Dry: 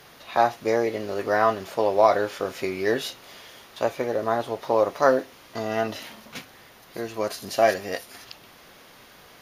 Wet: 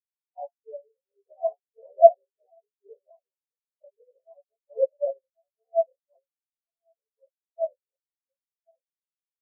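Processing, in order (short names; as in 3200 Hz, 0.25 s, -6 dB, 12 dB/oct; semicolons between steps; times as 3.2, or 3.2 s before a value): short-time reversal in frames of 45 ms; on a send: echo 1.083 s -8.5 dB; on the sum: chorus voices 6, 1.4 Hz, delay 15 ms, depth 3 ms; band shelf 680 Hz +14.5 dB; spectral expander 4:1; gain -4.5 dB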